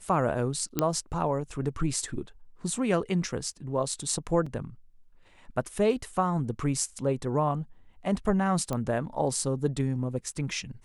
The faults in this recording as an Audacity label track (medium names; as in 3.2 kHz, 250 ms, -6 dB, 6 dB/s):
0.790000	0.790000	pop -10 dBFS
4.460000	4.460000	dropout 4.6 ms
8.730000	8.730000	pop -17 dBFS